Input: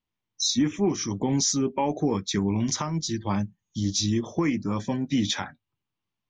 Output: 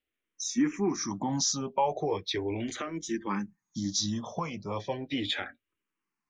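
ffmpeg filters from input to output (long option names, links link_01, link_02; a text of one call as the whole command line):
ffmpeg -i in.wav -filter_complex "[0:a]bass=frequency=250:gain=-10,treble=frequency=4000:gain=-6,asplit=2[link_01][link_02];[link_02]acompressor=threshold=-37dB:ratio=6,volume=-2dB[link_03];[link_01][link_03]amix=inputs=2:normalize=0,asplit=2[link_04][link_05];[link_05]afreqshift=-0.37[link_06];[link_04][link_06]amix=inputs=2:normalize=1" out.wav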